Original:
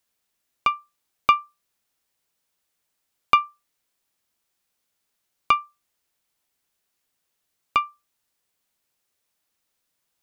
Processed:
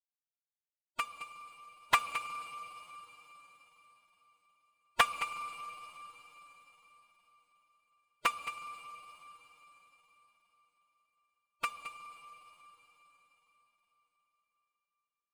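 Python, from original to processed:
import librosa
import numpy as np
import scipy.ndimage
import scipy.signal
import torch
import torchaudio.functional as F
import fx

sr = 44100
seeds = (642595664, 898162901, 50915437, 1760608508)

p1 = scipy.signal.medfilt(x, 9)
p2 = fx.power_curve(p1, sr, exponent=2.0)
p3 = p2 + fx.echo_single(p2, sr, ms=146, db=-12.0, dry=0)
p4 = fx.rev_schroeder(p3, sr, rt60_s=3.0, comb_ms=27, drr_db=9.0)
p5 = fx.stretch_vocoder(p4, sr, factor=1.5)
p6 = fx.high_shelf(p5, sr, hz=4500.0, db=6.5)
p7 = fx.doppler_dist(p6, sr, depth_ms=0.53)
y = p7 * librosa.db_to_amplitude(-6.5)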